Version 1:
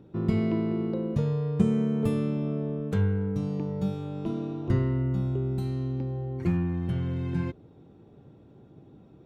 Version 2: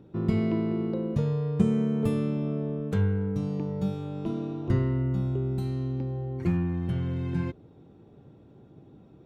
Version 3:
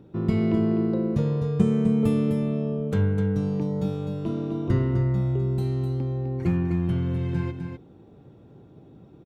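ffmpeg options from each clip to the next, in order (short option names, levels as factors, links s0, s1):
-af anull
-af "aecho=1:1:254:0.447,volume=1.26"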